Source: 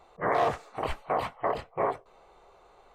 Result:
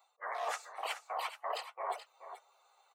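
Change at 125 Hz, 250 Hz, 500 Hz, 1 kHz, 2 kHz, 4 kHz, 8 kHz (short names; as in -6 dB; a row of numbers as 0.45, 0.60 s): under -40 dB, under -25 dB, -13.5 dB, -8.5 dB, -6.0 dB, +0.5 dB, n/a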